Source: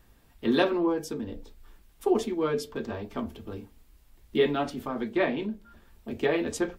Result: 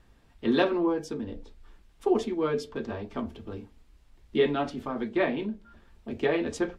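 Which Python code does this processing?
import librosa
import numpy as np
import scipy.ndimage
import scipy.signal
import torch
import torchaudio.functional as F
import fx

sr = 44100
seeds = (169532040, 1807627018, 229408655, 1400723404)

y = fx.air_absorb(x, sr, metres=59.0)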